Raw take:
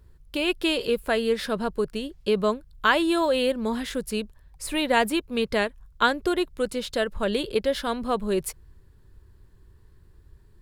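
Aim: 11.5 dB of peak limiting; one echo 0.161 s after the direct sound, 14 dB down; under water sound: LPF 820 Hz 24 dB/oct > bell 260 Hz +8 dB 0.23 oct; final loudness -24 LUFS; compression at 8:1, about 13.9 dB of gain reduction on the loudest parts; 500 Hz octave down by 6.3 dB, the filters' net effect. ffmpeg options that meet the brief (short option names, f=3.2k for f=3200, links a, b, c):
-af "equalizer=f=500:t=o:g=-8,acompressor=threshold=-31dB:ratio=8,alimiter=level_in=3.5dB:limit=-24dB:level=0:latency=1,volume=-3.5dB,lowpass=f=820:w=0.5412,lowpass=f=820:w=1.3066,equalizer=f=260:t=o:w=0.23:g=8,aecho=1:1:161:0.2,volume=14dB"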